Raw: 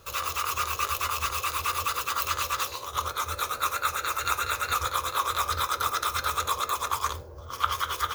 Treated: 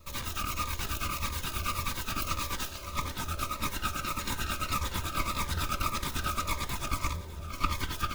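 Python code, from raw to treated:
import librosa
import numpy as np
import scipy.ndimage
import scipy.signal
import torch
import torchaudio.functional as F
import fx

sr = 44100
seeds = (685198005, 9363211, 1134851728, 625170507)

p1 = fx.lower_of_two(x, sr, delay_ms=3.2)
p2 = fx.bass_treble(p1, sr, bass_db=7, treble_db=-3)
p3 = p2 + fx.echo_swing(p2, sr, ms=809, ratio=3, feedback_pct=59, wet_db=-19.0, dry=0)
p4 = fx.notch_cascade(p3, sr, direction='falling', hz=1.7)
y = p4 * 10.0 ** (-1.5 / 20.0)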